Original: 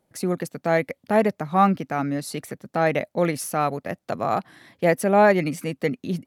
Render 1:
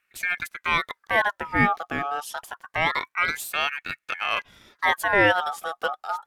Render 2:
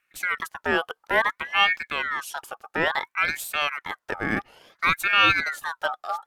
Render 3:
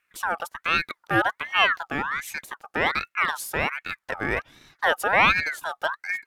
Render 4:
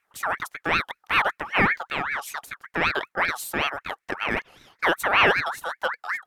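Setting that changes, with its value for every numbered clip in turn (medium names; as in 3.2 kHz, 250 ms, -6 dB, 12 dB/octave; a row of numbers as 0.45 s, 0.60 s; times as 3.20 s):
ring modulator with a swept carrier, at: 0.26 Hz, 0.58 Hz, 1.3 Hz, 5.2 Hz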